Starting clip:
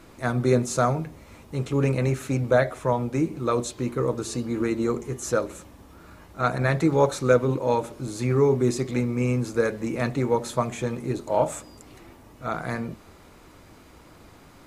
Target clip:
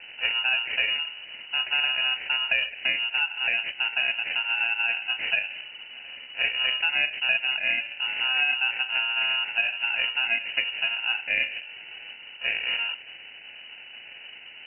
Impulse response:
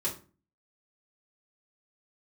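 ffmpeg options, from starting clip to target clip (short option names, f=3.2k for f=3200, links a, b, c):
-filter_complex "[0:a]acrusher=samples=24:mix=1:aa=0.000001,acrossover=split=540|1900[a][b][c];[a]acompressor=threshold=-32dB:ratio=4[d];[b]acompressor=threshold=-37dB:ratio=4[e];[c]acompressor=threshold=-44dB:ratio=4[f];[d][e][f]amix=inputs=3:normalize=0,lowpass=f=2.6k:t=q:w=0.5098,lowpass=f=2.6k:t=q:w=0.6013,lowpass=f=2.6k:t=q:w=0.9,lowpass=f=2.6k:t=q:w=2.563,afreqshift=-3000,volume=6dB"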